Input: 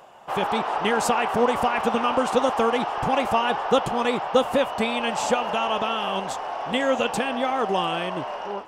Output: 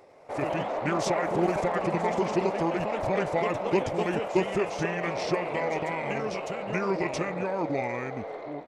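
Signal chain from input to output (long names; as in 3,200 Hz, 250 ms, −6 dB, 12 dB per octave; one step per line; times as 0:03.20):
delay with pitch and tempo change per echo 96 ms, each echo +2 semitones, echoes 3, each echo −6 dB
pitch shifter −5.5 semitones
level −5.5 dB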